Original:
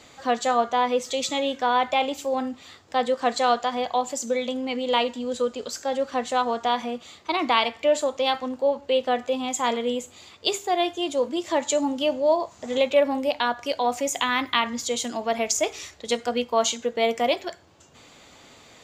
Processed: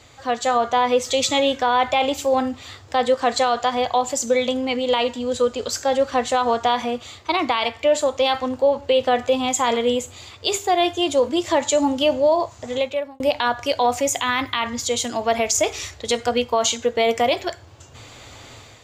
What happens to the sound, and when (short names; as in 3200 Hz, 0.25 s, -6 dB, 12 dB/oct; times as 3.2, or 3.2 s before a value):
12.33–13.2 fade out
whole clip: resonant low shelf 140 Hz +6 dB, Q 3; AGC gain up to 8 dB; limiter -9 dBFS